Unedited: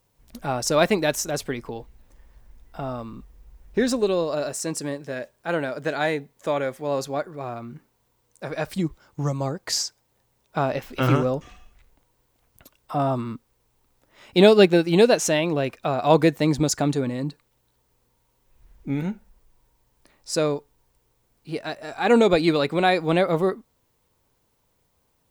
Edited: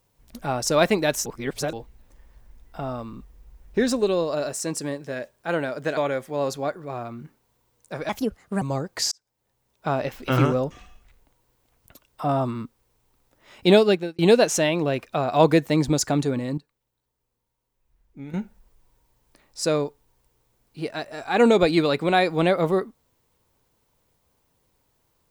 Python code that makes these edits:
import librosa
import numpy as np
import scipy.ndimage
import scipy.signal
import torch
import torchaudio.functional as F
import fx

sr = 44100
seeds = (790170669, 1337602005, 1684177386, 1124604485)

y = fx.edit(x, sr, fx.reverse_span(start_s=1.26, length_s=0.47),
    fx.cut(start_s=5.97, length_s=0.51),
    fx.speed_span(start_s=8.6, length_s=0.72, speed=1.37),
    fx.fade_in_span(start_s=9.82, length_s=1.18, curve='qsin'),
    fx.fade_out_span(start_s=14.38, length_s=0.51),
    fx.clip_gain(start_s=17.28, length_s=1.76, db=-12.0), tone=tone)